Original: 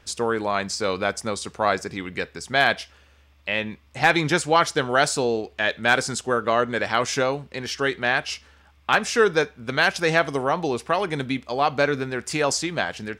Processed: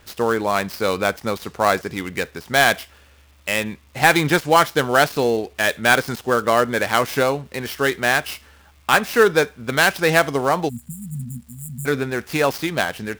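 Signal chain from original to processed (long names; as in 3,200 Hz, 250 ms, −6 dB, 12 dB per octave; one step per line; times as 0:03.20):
gap after every zero crossing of 0.073 ms
time-frequency box erased 0:10.69–0:11.86, 240–6,900 Hz
surface crackle 580 per second −51 dBFS
level +4 dB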